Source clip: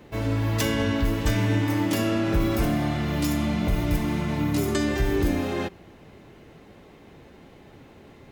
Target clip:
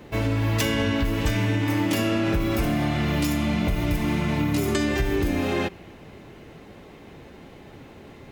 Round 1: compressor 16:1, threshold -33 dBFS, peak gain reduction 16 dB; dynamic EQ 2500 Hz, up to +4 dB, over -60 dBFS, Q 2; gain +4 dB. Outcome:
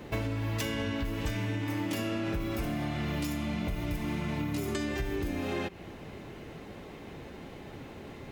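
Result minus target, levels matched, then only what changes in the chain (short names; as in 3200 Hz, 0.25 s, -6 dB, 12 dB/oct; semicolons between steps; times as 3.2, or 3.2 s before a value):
compressor: peak gain reduction +9.5 dB
change: compressor 16:1, threshold -23 dBFS, peak gain reduction 6.5 dB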